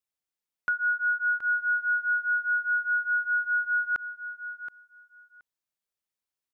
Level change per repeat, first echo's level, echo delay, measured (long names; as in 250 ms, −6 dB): −16.5 dB, −11.5 dB, 724 ms